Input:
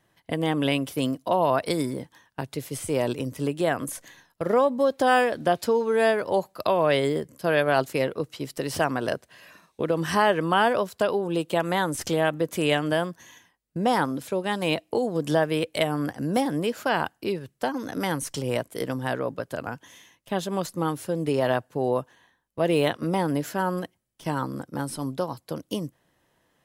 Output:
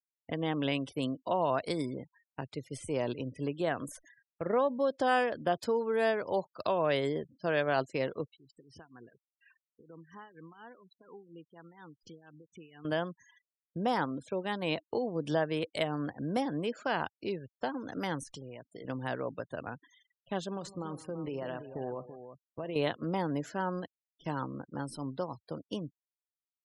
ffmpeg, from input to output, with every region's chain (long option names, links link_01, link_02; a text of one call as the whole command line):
ffmpeg -i in.wav -filter_complex "[0:a]asettb=1/sr,asplit=3[link_01][link_02][link_03];[link_01]atrim=end=8.294[link_04];[link_02]atrim=start=8.29:end=12.85,asetpts=PTS-STARTPTS,afade=type=in:duration=0.004:curve=qsin,afade=type=out:start_time=4.556:duration=0.004:curve=qsin,equalizer=frequency=600:width_type=o:width=0.42:gain=-12,acompressor=threshold=-45dB:ratio=2.5:attack=3.2:release=140:knee=1:detection=peak,tremolo=f=4.2:d=0.68[link_05];[link_03]atrim=start=12.846[link_06];[link_04][link_05]acrossfade=duration=0.004:curve1=hsin:curve2=qsin[link_07];[link_07][link_06]acrossfade=duration=0.004:curve1=qsin:curve2=hsin,asettb=1/sr,asplit=3[link_08][link_09][link_10];[link_08]atrim=end=18.234[link_11];[link_09]atrim=start=18.23:end=18.85,asetpts=PTS-STARTPTS,afade=type=in:duration=0.004:curve=qsin,afade=type=out:start_time=0.616:duration=0.004:curve=qsin,equalizer=frequency=570:width=3.3:gain=-3,acompressor=threshold=-33dB:ratio=10:attack=3.2:release=140:knee=1:detection=peak[link_12];[link_10]atrim=start=18.846[link_13];[link_11][link_12]acrossfade=duration=0.004:curve1=hsin:curve2=qsin[link_14];[link_14][link_13]acrossfade=duration=0.004:curve1=qsin:curve2=hsin,asettb=1/sr,asplit=3[link_15][link_16][link_17];[link_15]atrim=end=20.514[link_18];[link_16]atrim=start=20.51:end=22.76,asetpts=PTS-STARTPTS,afade=type=in:duration=0.004:curve=qsin,afade=type=out:start_time=2.246:duration=0.004:curve=qsin,acompressor=threshold=-25dB:ratio=12:attack=3.2:release=140:knee=1:detection=peak,aecho=1:1:51|157|335:0.168|0.158|0.316,atrim=end_sample=99225[link_19];[link_17]atrim=start=22.756[link_20];[link_18][link_19]acrossfade=duration=0.004:curve1=hsin:curve2=qsin[link_21];[link_21][link_20]acrossfade=duration=0.004:curve1=qsin:curve2=hsin,lowpass=8400,afftfilt=real='re*gte(hypot(re,im),0.00891)':imag='im*gte(hypot(re,im),0.00891)':win_size=1024:overlap=0.75,volume=-7.5dB" out.wav